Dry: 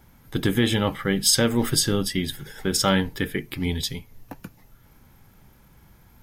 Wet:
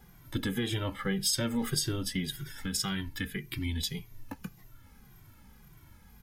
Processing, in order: compression 2.5:1, threshold -29 dBFS, peak gain reduction 10 dB; peaking EQ 560 Hz -2.5 dB 1.2 oct, from 2.33 s -13.5 dB, from 3.76 s -6 dB; endless flanger 2 ms -1.8 Hz; trim +1.5 dB

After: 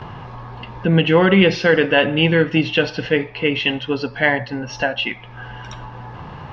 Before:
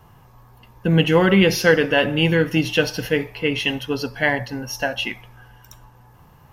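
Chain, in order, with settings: gate with hold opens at -43 dBFS; low-pass 4.1 kHz 24 dB/octave; bass shelf 76 Hz -8.5 dB; upward compressor, threshold -23 dBFS; loudness maximiser +5 dB; trim -2 dB

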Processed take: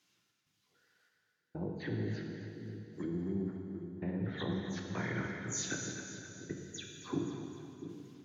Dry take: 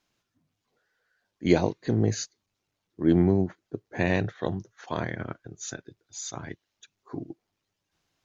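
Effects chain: delay that grows with frequency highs early, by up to 102 ms; high-pass 160 Hz 12 dB/octave; low-pass that closes with the level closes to 630 Hz, closed at -21.5 dBFS; peaking EQ 640 Hz -11.5 dB 1.7 oct; compression 4:1, threshold -34 dBFS, peak gain reduction 11.5 dB; peak limiter -33 dBFS, peak gain reduction 10.5 dB; gain riding within 4 dB 0.5 s; trance gate "xx.xxxx...xxxxx." 97 bpm -60 dB; two-band feedback delay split 500 Hz, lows 691 ms, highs 262 ms, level -10.5 dB; plate-style reverb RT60 2.4 s, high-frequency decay 0.95×, DRR 1 dB; trim +4.5 dB

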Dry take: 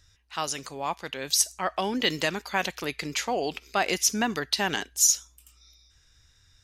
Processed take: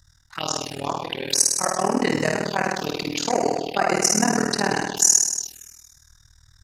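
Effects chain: flutter echo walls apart 9.9 m, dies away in 1.3 s; AM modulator 39 Hz, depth 90%; touch-sensitive phaser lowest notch 430 Hz, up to 3.4 kHz, full sweep at -25.5 dBFS; trim +8 dB

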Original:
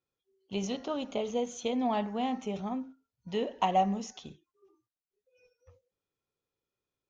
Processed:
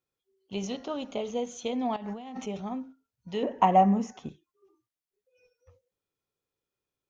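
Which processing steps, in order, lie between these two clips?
1.96–2.46 s: compressor with a negative ratio -39 dBFS, ratio -1; 3.43–4.29 s: graphic EQ 125/250/500/1000/2000/4000 Hz +8/+7/+3/+6/+5/-11 dB

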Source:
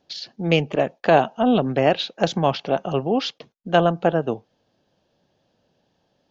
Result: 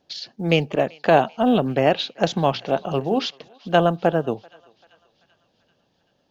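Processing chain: 2.50–3.26 s: hum notches 60/120/180/240/300/360/420 Hz; thinning echo 388 ms, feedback 64%, high-pass 1 kHz, level -23 dB; short-mantissa float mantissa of 6-bit

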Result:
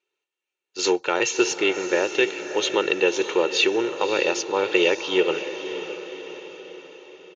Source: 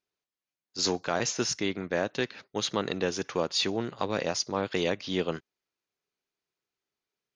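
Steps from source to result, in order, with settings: cabinet simulation 290–8000 Hz, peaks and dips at 360 Hz +6 dB, 2.7 kHz +10 dB, 5 kHz -9 dB; comb 2.2 ms, depth 62%; on a send: echo that smears into a reverb 578 ms, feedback 51%, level -10 dB; on the sum: trim +4.5 dB

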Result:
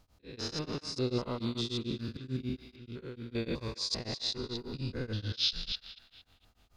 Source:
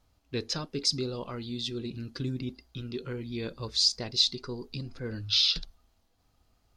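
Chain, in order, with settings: spectrogram pixelated in time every 200 ms; slow attack 274 ms; 2.86–3.35 s: level held to a coarse grid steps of 23 dB; on a send: band-passed feedback delay 231 ms, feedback 47%, band-pass 1.7 kHz, level -6 dB; on the sum: tremolo of two beating tones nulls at 6.8 Hz; trim +6 dB

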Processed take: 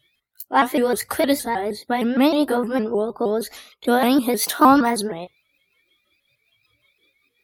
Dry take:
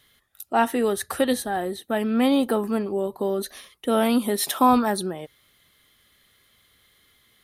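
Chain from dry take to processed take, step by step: sawtooth pitch modulation +3.5 st, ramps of 155 ms; spectral noise reduction 17 dB; trim +4.5 dB

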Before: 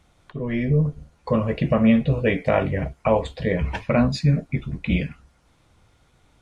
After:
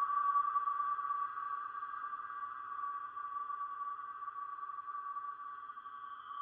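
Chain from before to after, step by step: split-band scrambler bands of 1 kHz; Doppler pass-by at 1.87 s, 10 m/s, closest 9.1 m; low-pass 4.8 kHz 12 dB/octave; hum notches 50/100/150/200/250/300/350/400 Hz; spectral gate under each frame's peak -30 dB strong; tilt EQ +3 dB/octave; level-controlled noise filter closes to 1.1 kHz, open at -14.5 dBFS; level held to a coarse grid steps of 15 dB; filtered feedback delay 100 ms, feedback 72%, low-pass 860 Hz, level -5.5 dB; spring tank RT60 1.2 s, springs 45 ms, chirp 70 ms, DRR 5.5 dB; Paulstretch 34×, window 0.10 s, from 4.35 s; trim -6 dB

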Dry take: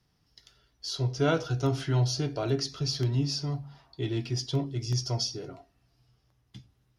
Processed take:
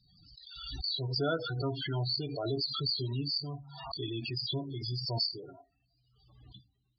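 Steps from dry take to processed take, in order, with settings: FFT filter 150 Hz 0 dB, 930 Hz +6 dB, 1.4 kHz +7 dB, 4.6 kHz +14 dB, 8 kHz -29 dB; loudest bins only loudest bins 16; swell ahead of each attack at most 44 dB/s; trim -9 dB

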